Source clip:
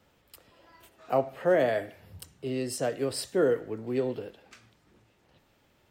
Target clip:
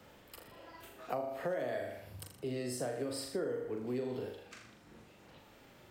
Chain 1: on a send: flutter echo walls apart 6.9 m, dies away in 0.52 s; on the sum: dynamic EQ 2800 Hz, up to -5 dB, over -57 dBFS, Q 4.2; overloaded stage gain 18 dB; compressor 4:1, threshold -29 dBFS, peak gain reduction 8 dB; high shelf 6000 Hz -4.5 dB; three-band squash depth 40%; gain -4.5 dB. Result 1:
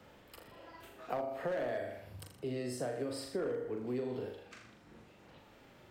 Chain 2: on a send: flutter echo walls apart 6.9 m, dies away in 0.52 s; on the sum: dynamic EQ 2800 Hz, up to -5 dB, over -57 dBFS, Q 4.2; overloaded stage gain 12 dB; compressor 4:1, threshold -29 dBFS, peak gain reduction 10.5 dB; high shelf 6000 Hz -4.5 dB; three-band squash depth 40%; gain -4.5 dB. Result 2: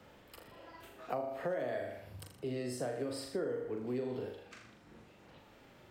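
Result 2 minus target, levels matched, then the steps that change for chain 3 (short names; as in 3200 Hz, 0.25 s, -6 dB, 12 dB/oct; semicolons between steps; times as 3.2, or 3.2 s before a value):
8000 Hz band -4.5 dB
change: high shelf 6000 Hz +2 dB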